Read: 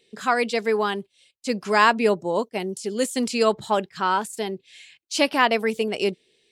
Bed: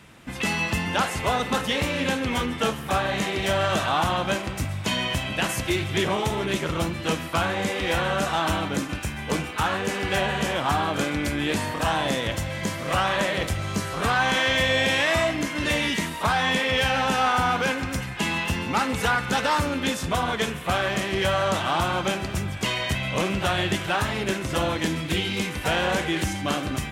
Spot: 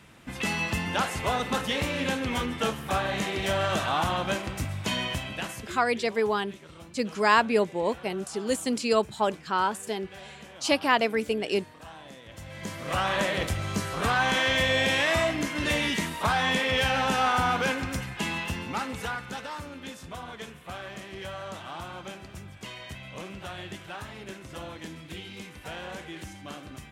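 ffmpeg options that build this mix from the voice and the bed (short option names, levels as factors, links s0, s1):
-filter_complex "[0:a]adelay=5500,volume=0.668[s0];[1:a]volume=5.96,afade=t=out:st=4.98:d=0.84:silence=0.125893,afade=t=in:st=12.27:d=0.91:silence=0.112202,afade=t=out:st=17.72:d=1.78:silence=0.237137[s1];[s0][s1]amix=inputs=2:normalize=0"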